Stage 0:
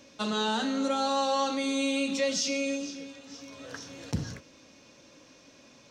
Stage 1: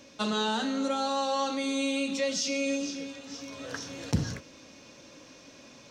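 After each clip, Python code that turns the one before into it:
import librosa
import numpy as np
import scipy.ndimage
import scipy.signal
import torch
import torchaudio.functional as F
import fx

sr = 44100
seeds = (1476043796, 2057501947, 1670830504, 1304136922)

y = fx.rider(x, sr, range_db=4, speed_s=0.5)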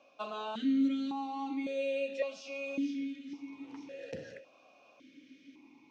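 y = fx.vowel_held(x, sr, hz=1.8)
y = y * librosa.db_to_amplitude(3.5)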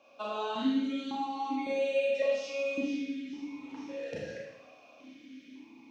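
y = fx.rev_schroeder(x, sr, rt60_s=0.82, comb_ms=27, drr_db=-3.5)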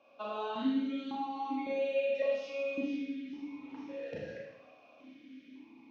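y = fx.air_absorb(x, sr, metres=160.0)
y = y * librosa.db_to_amplitude(-2.0)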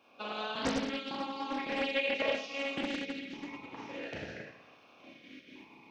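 y = fx.spec_clip(x, sr, under_db=17)
y = fx.doppler_dist(y, sr, depth_ms=0.79)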